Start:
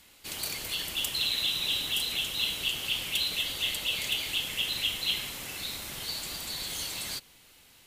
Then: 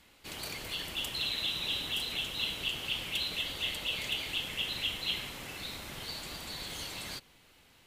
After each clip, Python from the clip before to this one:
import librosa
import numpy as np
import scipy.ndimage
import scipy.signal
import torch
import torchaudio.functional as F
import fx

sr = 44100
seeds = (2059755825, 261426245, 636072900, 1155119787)

y = fx.high_shelf(x, sr, hz=4100.0, db=-11.0)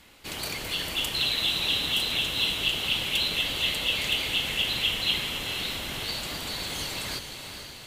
y = fx.echo_diffused(x, sr, ms=460, feedback_pct=57, wet_db=-7.5)
y = y * librosa.db_to_amplitude(7.0)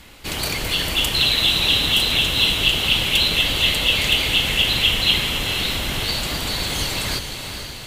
y = fx.low_shelf(x, sr, hz=100.0, db=8.5)
y = y * librosa.db_to_amplitude(8.5)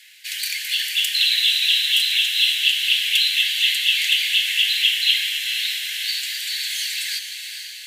y = scipy.signal.sosfilt(scipy.signal.butter(16, 1600.0, 'highpass', fs=sr, output='sos'), x)